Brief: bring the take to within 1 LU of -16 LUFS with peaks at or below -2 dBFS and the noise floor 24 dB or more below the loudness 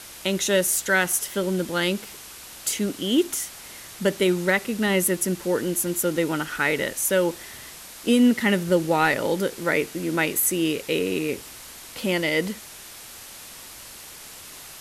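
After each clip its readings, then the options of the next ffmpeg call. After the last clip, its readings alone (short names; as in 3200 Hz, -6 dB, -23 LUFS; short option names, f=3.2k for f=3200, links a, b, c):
noise floor -42 dBFS; noise floor target -48 dBFS; loudness -23.5 LUFS; peak -8.0 dBFS; loudness target -16.0 LUFS
-> -af "afftdn=nr=6:nf=-42"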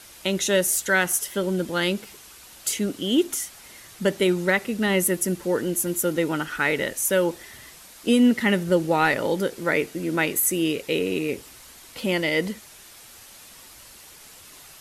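noise floor -47 dBFS; noise floor target -48 dBFS
-> -af "afftdn=nr=6:nf=-47"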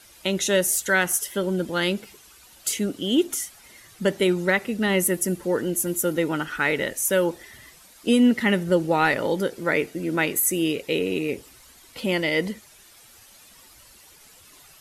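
noise floor -51 dBFS; loudness -23.5 LUFS; peak -8.5 dBFS; loudness target -16.0 LUFS
-> -af "volume=7.5dB,alimiter=limit=-2dB:level=0:latency=1"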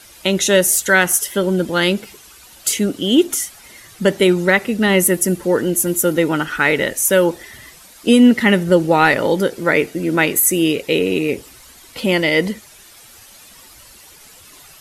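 loudness -16.0 LUFS; peak -2.0 dBFS; noise floor -44 dBFS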